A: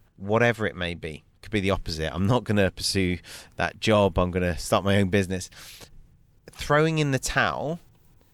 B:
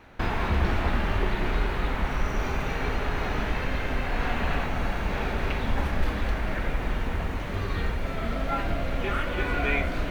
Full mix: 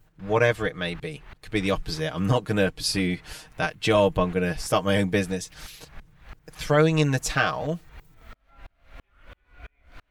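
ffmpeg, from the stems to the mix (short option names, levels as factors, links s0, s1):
-filter_complex "[0:a]aecho=1:1:6.5:0.75,volume=0.794[s0];[1:a]acrossover=split=95|770[s1][s2][s3];[s1]acompressor=threshold=0.0158:ratio=4[s4];[s2]acompressor=threshold=0.00178:ratio=4[s5];[s3]acompressor=threshold=0.00708:ratio=4[s6];[s4][s5][s6]amix=inputs=3:normalize=0,aeval=exprs='val(0)*pow(10,-39*if(lt(mod(-3*n/s,1),2*abs(-3)/1000),1-mod(-3*n/s,1)/(2*abs(-3)/1000),(mod(-3*n/s,1)-2*abs(-3)/1000)/(1-2*abs(-3)/1000))/20)':c=same,volume=0.794[s7];[s0][s7]amix=inputs=2:normalize=0"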